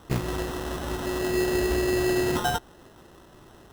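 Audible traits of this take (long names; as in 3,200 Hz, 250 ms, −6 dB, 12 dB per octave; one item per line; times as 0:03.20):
aliases and images of a low sample rate 2,300 Hz, jitter 0%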